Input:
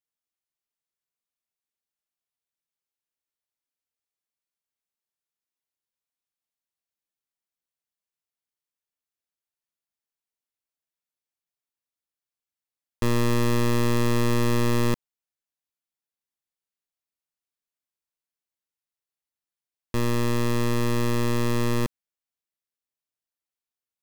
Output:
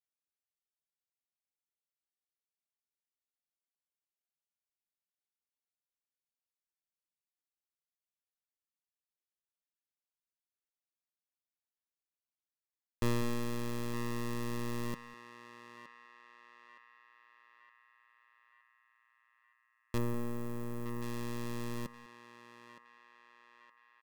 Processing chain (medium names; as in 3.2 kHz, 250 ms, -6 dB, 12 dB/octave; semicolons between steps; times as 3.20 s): delay 198 ms -17 dB; reverb removal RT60 2 s; 19.98–21.02 s: peaking EQ 4.2 kHz -13.5 dB 2 oct; band-passed feedback delay 917 ms, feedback 66%, band-pass 1.7 kHz, level -8 dB; trim -7.5 dB